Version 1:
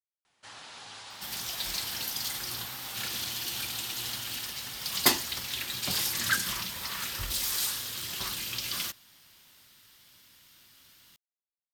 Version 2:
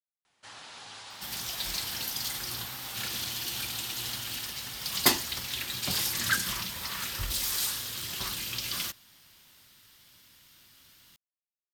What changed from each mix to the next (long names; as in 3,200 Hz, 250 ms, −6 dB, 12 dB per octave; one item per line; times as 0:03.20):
second sound: add low-shelf EQ 170 Hz +3.5 dB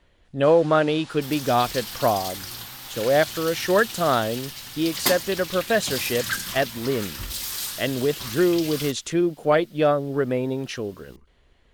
speech: unmuted